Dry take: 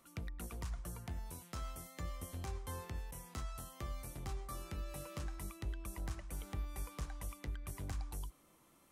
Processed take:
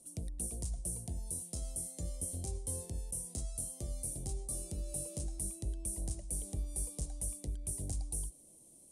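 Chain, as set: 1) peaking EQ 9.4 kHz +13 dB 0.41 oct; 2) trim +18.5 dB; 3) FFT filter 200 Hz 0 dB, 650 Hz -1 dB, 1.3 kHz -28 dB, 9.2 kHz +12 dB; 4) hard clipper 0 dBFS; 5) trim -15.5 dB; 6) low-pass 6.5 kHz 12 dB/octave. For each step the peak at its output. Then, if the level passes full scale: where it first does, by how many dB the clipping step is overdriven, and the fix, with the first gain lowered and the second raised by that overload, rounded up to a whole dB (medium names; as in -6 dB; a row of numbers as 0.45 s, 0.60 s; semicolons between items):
-29.0 dBFS, -10.5 dBFS, -1.5 dBFS, -1.5 dBFS, -17.0 dBFS, -24.5 dBFS; nothing clips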